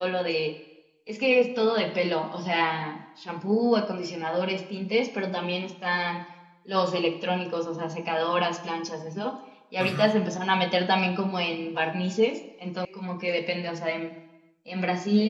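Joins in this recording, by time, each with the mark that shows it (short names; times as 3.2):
12.85 sound cut off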